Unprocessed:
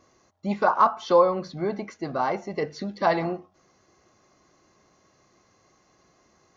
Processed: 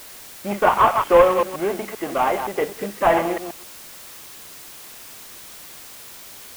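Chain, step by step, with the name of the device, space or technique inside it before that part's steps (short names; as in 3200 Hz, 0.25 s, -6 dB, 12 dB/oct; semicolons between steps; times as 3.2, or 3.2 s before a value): reverse delay 0.13 s, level -8 dB; army field radio (BPF 310–2800 Hz; CVSD 16 kbps; white noise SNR 18 dB); gain +6.5 dB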